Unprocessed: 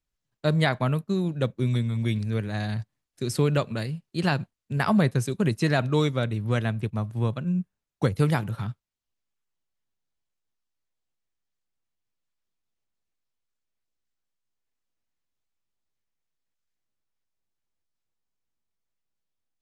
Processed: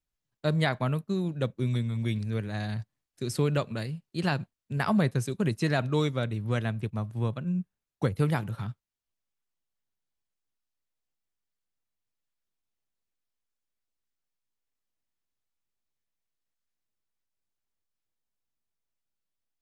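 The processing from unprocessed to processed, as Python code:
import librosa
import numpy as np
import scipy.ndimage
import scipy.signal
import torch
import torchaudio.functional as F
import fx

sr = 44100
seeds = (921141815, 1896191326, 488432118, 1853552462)

y = fx.dynamic_eq(x, sr, hz=6000.0, q=1.1, threshold_db=-53.0, ratio=4.0, max_db=-5, at=(7.27, 8.36))
y = F.gain(torch.from_numpy(y), -3.5).numpy()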